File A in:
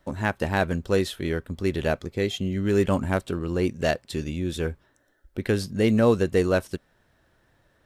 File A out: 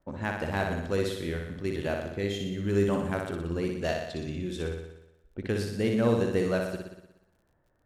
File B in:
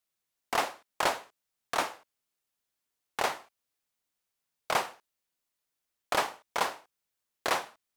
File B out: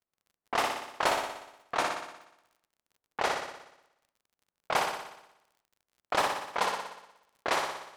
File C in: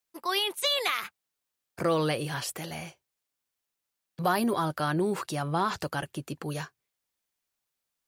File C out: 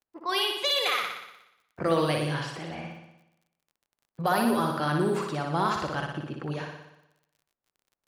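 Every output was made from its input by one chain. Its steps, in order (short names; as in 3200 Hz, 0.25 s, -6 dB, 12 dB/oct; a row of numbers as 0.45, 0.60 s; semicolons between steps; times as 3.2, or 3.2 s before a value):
low-pass opened by the level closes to 1100 Hz, open at -23 dBFS; flutter echo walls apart 10.3 m, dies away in 0.87 s; crackle 44/s -52 dBFS; normalise peaks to -12 dBFS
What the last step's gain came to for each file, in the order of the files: -7.0, -0.5, -0.5 dB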